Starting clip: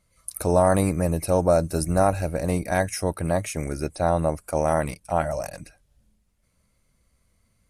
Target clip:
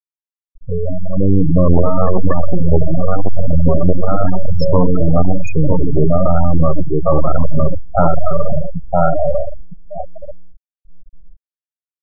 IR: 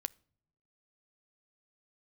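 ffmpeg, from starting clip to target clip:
-filter_complex "[0:a]aeval=exprs='if(lt(val(0),0),0.251*val(0),val(0))':channel_layout=same,asplit=2[link_01][link_02];[link_02]adelay=49,volume=-11dB[link_03];[link_01][link_03]amix=inputs=2:normalize=0,aecho=1:1:607|1214|1821|2428:0.531|0.143|0.0387|0.0104,asplit=2[link_04][link_05];[1:a]atrim=start_sample=2205,atrim=end_sample=4410,lowpass=6300[link_06];[link_05][link_06]afir=irnorm=-1:irlink=0,volume=14.5dB[link_07];[link_04][link_07]amix=inputs=2:normalize=0,aresample=16000,aresample=44100,highshelf=frequency=5200:gain=2.5,acrossover=split=450[link_08][link_09];[link_09]acompressor=threshold=-12dB:ratio=10[link_10];[link_08][link_10]amix=inputs=2:normalize=0,atempo=0.64,asoftclip=type=hard:threshold=-11dB,dynaudnorm=framelen=340:gausssize=7:maxgain=15dB,afftfilt=real='re*gte(hypot(re,im),1)':imag='im*gte(hypot(re,im),1)':win_size=1024:overlap=0.75,adynamicequalizer=threshold=0.0562:dfrequency=900:dqfactor=0.93:tfrequency=900:tqfactor=0.93:attack=5:release=100:ratio=0.375:range=3:mode=cutabove:tftype=bell,volume=-2.5dB"

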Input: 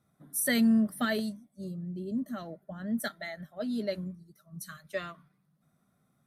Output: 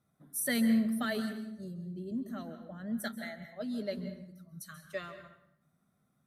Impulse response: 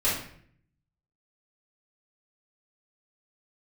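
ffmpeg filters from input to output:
-filter_complex "[0:a]asplit=2[link_01][link_02];[1:a]atrim=start_sample=2205,asetrate=35721,aresample=44100,adelay=131[link_03];[link_02][link_03]afir=irnorm=-1:irlink=0,volume=-22.5dB[link_04];[link_01][link_04]amix=inputs=2:normalize=0,volume=-4dB"

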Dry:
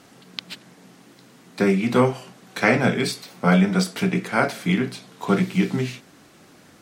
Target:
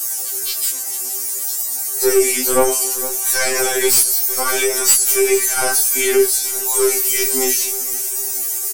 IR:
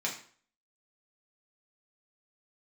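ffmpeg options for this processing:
-filter_complex "[0:a]highpass=frequency=360:width=0.5412,highpass=frequency=360:width=1.3066,aemphasis=mode=production:type=50fm,aecho=1:1:2.6:0.87,flanger=delay=9:depth=8.1:regen=50:speed=1.9:shape=triangular,atempo=0.78,aeval=exprs='(tanh(7.08*val(0)+0.3)-tanh(0.3))/7.08':channel_layout=same,flanger=delay=16.5:depth=2.8:speed=0.61,acrossover=split=840[link_01][link_02];[link_02]aexciter=amount=9.6:drive=2.7:freq=5300[link_03];[link_01][link_03]amix=inputs=2:normalize=0,aeval=exprs='1.06*sin(PI/2*2.82*val(0)/1.06)':channel_layout=same,asplit=2[link_04][link_05];[link_05]aecho=0:1:460|920|1380|1840:0.0668|0.0381|0.0217|0.0124[link_06];[link_04][link_06]amix=inputs=2:normalize=0,alimiter=level_in=10.5dB:limit=-1dB:release=50:level=0:latency=1,afftfilt=real='re*2.45*eq(mod(b,6),0)':imag='im*2.45*eq(mod(b,6),0)':win_size=2048:overlap=0.75,volume=-5dB"

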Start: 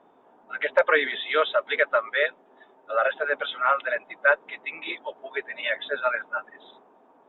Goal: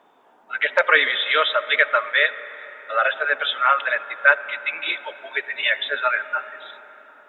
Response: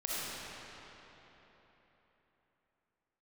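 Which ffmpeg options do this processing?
-filter_complex "[0:a]tiltshelf=frequency=1100:gain=-8,asplit=2[link_01][link_02];[1:a]atrim=start_sample=2205,lowpass=2500[link_03];[link_02][link_03]afir=irnorm=-1:irlink=0,volume=-18.5dB[link_04];[link_01][link_04]amix=inputs=2:normalize=0,volume=3dB"

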